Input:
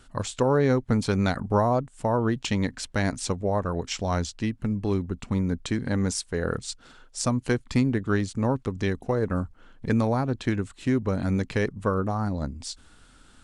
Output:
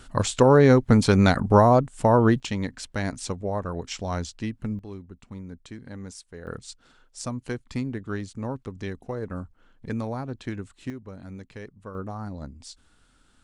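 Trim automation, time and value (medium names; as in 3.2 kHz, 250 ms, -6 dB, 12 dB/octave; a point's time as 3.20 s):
+6 dB
from 2.40 s -3 dB
from 4.79 s -13.5 dB
from 6.47 s -7 dB
from 10.90 s -15 dB
from 11.95 s -7.5 dB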